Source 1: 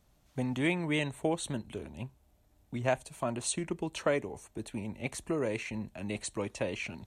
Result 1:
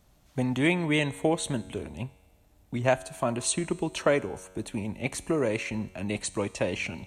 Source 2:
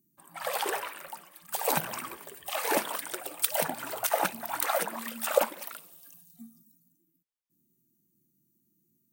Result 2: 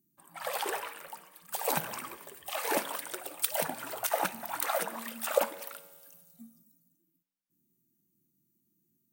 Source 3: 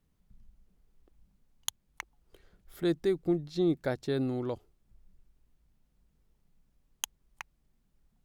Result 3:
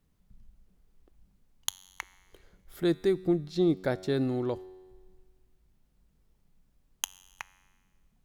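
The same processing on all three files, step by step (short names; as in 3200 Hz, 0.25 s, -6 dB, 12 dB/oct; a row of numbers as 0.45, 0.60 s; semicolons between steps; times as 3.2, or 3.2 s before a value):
resonator 93 Hz, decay 1.5 s, harmonics all, mix 50%; normalise peaks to -9 dBFS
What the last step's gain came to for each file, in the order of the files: +11.0, +3.0, +8.0 dB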